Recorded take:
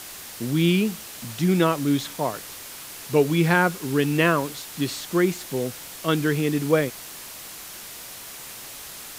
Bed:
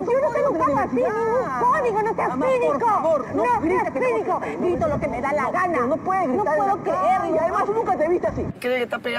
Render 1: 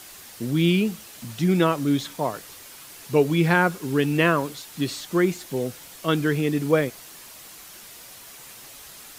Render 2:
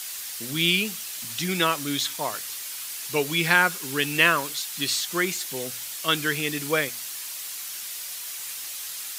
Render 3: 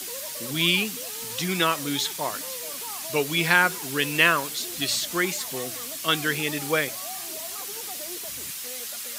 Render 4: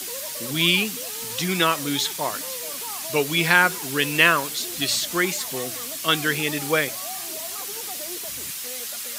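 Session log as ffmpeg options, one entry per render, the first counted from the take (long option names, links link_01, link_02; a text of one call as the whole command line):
ffmpeg -i in.wav -af "afftdn=noise_reduction=6:noise_floor=-40" out.wav
ffmpeg -i in.wav -af "tiltshelf=frequency=1100:gain=-10,bandreject=frequency=121.3:width_type=h:width=4,bandreject=frequency=242.6:width_type=h:width=4" out.wav
ffmpeg -i in.wav -i bed.wav -filter_complex "[1:a]volume=-22.5dB[link_01];[0:a][link_01]amix=inputs=2:normalize=0" out.wav
ffmpeg -i in.wav -af "volume=2.5dB,alimiter=limit=-2dB:level=0:latency=1" out.wav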